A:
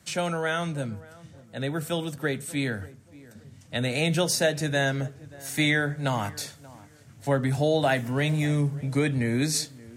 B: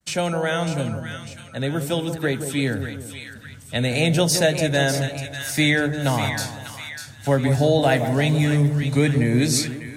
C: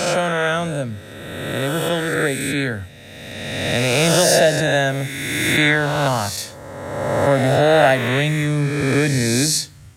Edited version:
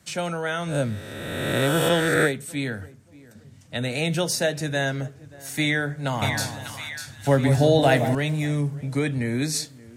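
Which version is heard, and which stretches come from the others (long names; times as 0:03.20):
A
0:00.71–0:02.28: punch in from C, crossfade 0.10 s
0:06.22–0:08.15: punch in from B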